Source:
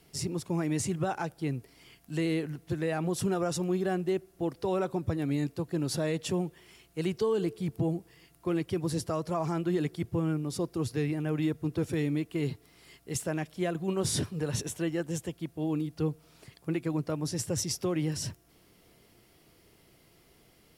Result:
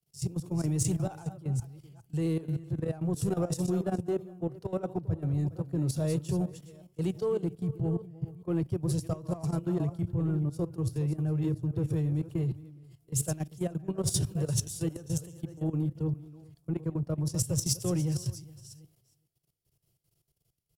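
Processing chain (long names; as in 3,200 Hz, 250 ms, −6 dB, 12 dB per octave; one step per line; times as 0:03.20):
delay that plays each chunk backwards 401 ms, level −10 dB
in parallel at −3.5 dB: soft clipping −32 dBFS, distortion −9 dB
on the sum: graphic EQ with 10 bands 125 Hz +10 dB, 250 Hz −9 dB, 1,000 Hz −4 dB, 2,000 Hz −11 dB, 4,000 Hz −5 dB
single-tap delay 412 ms −14 dB
on a send at −17.5 dB: convolution reverb RT60 0.45 s, pre-delay 5 ms
on the sum: output level in coarse steps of 14 dB
multiband upward and downward expander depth 70%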